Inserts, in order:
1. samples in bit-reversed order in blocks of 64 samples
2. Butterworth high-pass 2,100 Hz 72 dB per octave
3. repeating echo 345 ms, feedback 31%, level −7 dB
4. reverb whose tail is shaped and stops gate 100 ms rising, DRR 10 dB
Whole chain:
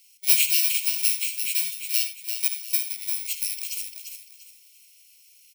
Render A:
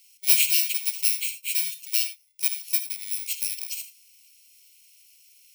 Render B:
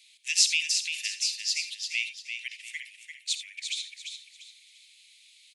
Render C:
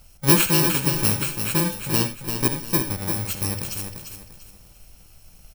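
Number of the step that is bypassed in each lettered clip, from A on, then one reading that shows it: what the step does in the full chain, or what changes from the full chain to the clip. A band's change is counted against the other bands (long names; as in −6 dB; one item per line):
3, echo-to-direct ratio −4.5 dB to −10.0 dB
1, change in crest factor +7.0 dB
2, change in integrated loudness +1.5 LU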